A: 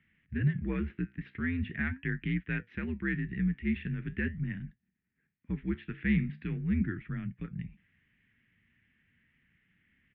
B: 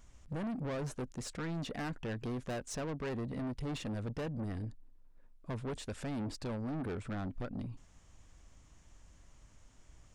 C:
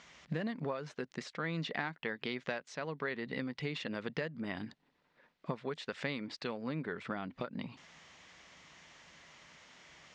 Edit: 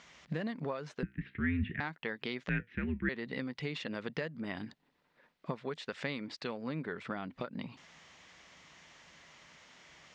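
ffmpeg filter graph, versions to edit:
-filter_complex "[0:a]asplit=2[s0][s1];[2:a]asplit=3[s2][s3][s4];[s2]atrim=end=1.032[s5];[s0]atrim=start=1.028:end=1.802[s6];[s3]atrim=start=1.798:end=2.492[s7];[s1]atrim=start=2.488:end=3.092[s8];[s4]atrim=start=3.088[s9];[s5][s6]acrossfade=d=0.004:c1=hsin:c2=hsin[s10];[s10][s7]acrossfade=d=0.004:c1=hsin:c2=hsin[s11];[s11][s8]acrossfade=d=0.004:c1=hsin:c2=hsin[s12];[s12][s9]acrossfade=d=0.004:c1=hsin:c2=hsin"

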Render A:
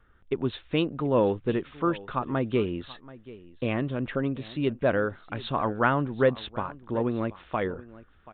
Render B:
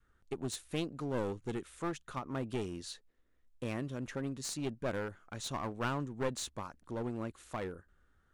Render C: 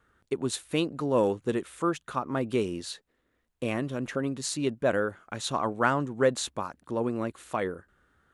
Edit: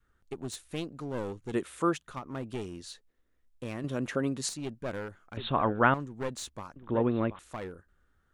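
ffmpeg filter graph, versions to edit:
-filter_complex "[2:a]asplit=2[s0][s1];[0:a]asplit=2[s2][s3];[1:a]asplit=5[s4][s5][s6][s7][s8];[s4]atrim=end=1.542[s9];[s0]atrim=start=1.538:end=2.072[s10];[s5]atrim=start=2.068:end=3.842[s11];[s1]atrim=start=3.838:end=4.492[s12];[s6]atrim=start=4.488:end=5.372[s13];[s2]atrim=start=5.368:end=5.942[s14];[s7]atrim=start=5.938:end=6.762[s15];[s3]atrim=start=6.758:end=7.392[s16];[s8]atrim=start=7.388[s17];[s9][s10]acrossfade=d=0.004:c1=hsin:c2=hsin[s18];[s18][s11]acrossfade=d=0.004:c1=hsin:c2=hsin[s19];[s19][s12]acrossfade=d=0.004:c1=hsin:c2=hsin[s20];[s20][s13]acrossfade=d=0.004:c1=hsin:c2=hsin[s21];[s21][s14]acrossfade=d=0.004:c1=hsin:c2=hsin[s22];[s22][s15]acrossfade=d=0.004:c1=hsin:c2=hsin[s23];[s23][s16]acrossfade=d=0.004:c1=hsin:c2=hsin[s24];[s24][s17]acrossfade=d=0.004:c1=hsin:c2=hsin"

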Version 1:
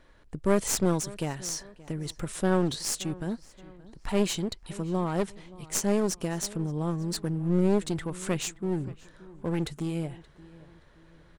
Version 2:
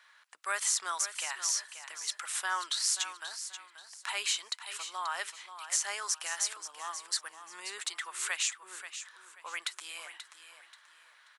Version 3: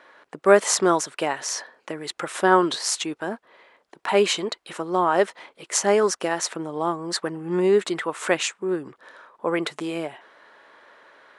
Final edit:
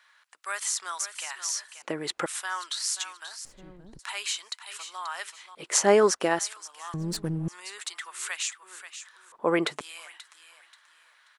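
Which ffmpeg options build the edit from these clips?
-filter_complex "[2:a]asplit=3[s0][s1][s2];[0:a]asplit=2[s3][s4];[1:a]asplit=6[s5][s6][s7][s8][s9][s10];[s5]atrim=end=1.822[s11];[s0]atrim=start=1.818:end=2.262[s12];[s6]atrim=start=2.258:end=3.452[s13];[s3]atrim=start=3.448:end=3.992[s14];[s7]atrim=start=3.988:end=5.552[s15];[s1]atrim=start=5.548:end=6.392[s16];[s8]atrim=start=6.388:end=6.942[s17];[s4]atrim=start=6.938:end=7.482[s18];[s9]atrim=start=7.478:end=9.322[s19];[s2]atrim=start=9.318:end=9.812[s20];[s10]atrim=start=9.808[s21];[s11][s12]acrossfade=d=0.004:c1=hsin:c2=hsin[s22];[s22][s13]acrossfade=d=0.004:c1=hsin:c2=hsin[s23];[s23][s14]acrossfade=d=0.004:c1=hsin:c2=hsin[s24];[s24][s15]acrossfade=d=0.004:c1=hsin:c2=hsin[s25];[s25][s16]acrossfade=d=0.004:c1=hsin:c2=hsin[s26];[s26][s17]acrossfade=d=0.004:c1=hsin:c2=hsin[s27];[s27][s18]acrossfade=d=0.004:c1=hsin:c2=hsin[s28];[s28][s19]acrossfade=d=0.004:c1=hsin:c2=hsin[s29];[s29][s20]acrossfade=d=0.004:c1=hsin:c2=hsin[s30];[s30][s21]acrossfade=d=0.004:c1=hsin:c2=hsin"

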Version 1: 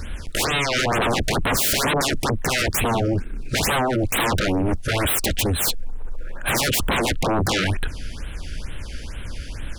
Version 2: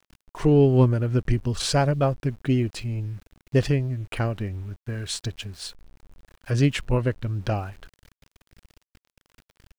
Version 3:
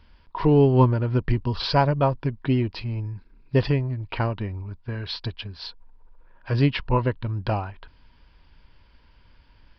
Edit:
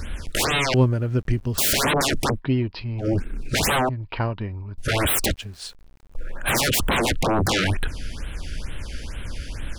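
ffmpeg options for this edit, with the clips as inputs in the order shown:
-filter_complex "[1:a]asplit=2[s0][s1];[2:a]asplit=2[s2][s3];[0:a]asplit=5[s4][s5][s6][s7][s8];[s4]atrim=end=0.742[s9];[s0]atrim=start=0.738:end=1.582[s10];[s5]atrim=start=1.578:end=2.41[s11];[s2]atrim=start=2.31:end=3.08[s12];[s6]atrim=start=2.98:end=3.892[s13];[s3]atrim=start=3.888:end=4.782[s14];[s7]atrim=start=4.778:end=5.342[s15];[s1]atrim=start=5.338:end=6.152[s16];[s8]atrim=start=6.148[s17];[s9][s10]acrossfade=d=0.004:c1=hsin:c2=hsin[s18];[s18][s11]acrossfade=d=0.004:c1=hsin:c2=hsin[s19];[s19][s12]acrossfade=d=0.1:c1=tri:c2=tri[s20];[s20][s13]acrossfade=d=0.1:c1=tri:c2=tri[s21];[s21][s14]acrossfade=d=0.004:c1=hsin:c2=hsin[s22];[s22][s15]acrossfade=d=0.004:c1=hsin:c2=hsin[s23];[s23][s16]acrossfade=d=0.004:c1=hsin:c2=hsin[s24];[s24][s17]acrossfade=d=0.004:c1=hsin:c2=hsin"

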